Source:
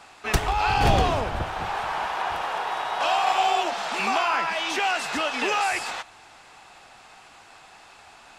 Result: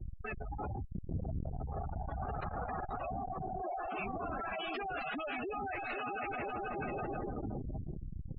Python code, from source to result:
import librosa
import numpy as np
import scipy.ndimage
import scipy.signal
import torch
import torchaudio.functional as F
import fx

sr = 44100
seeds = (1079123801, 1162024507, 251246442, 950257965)

y = np.minimum(x, 2.0 * 10.0 ** (-14.5 / 20.0) - x)
y = fx.echo_heads(y, sr, ms=163, heads='first and third', feedback_pct=68, wet_db=-12.0)
y = fx.over_compress(y, sr, threshold_db=-28.0, ratio=-0.5)
y = scipy.signal.sosfilt(scipy.signal.cheby2(4, 50, 10000.0, 'lowpass', fs=sr, output='sos'), y)
y = fx.peak_eq(y, sr, hz=930.0, db=-14.5, octaves=0.21)
y = fx.schmitt(y, sr, flips_db=-37.5)
y = fx.dmg_noise_colour(y, sr, seeds[0], colour='brown', level_db=-51.0)
y = fx.low_shelf(y, sr, hz=180.0, db=7.5, at=(0.92, 2.99))
y = fx.spec_gate(y, sr, threshold_db=-10, keep='strong')
y = fx.transformer_sat(y, sr, knee_hz=170.0)
y = y * librosa.db_to_amplitude(-4.0)